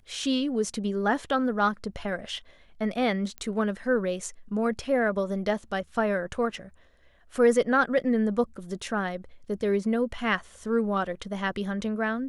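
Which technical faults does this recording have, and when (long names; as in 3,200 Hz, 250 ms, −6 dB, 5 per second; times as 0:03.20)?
0:03.38: click −22 dBFS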